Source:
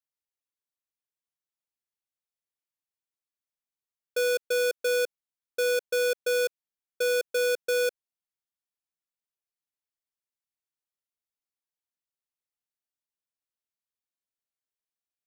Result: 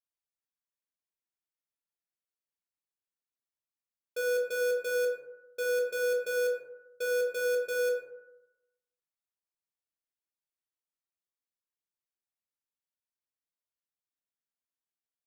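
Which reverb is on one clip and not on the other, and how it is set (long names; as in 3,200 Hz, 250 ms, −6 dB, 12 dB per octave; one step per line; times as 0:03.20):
dense smooth reverb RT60 0.96 s, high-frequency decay 0.3×, DRR −1.5 dB
level −9 dB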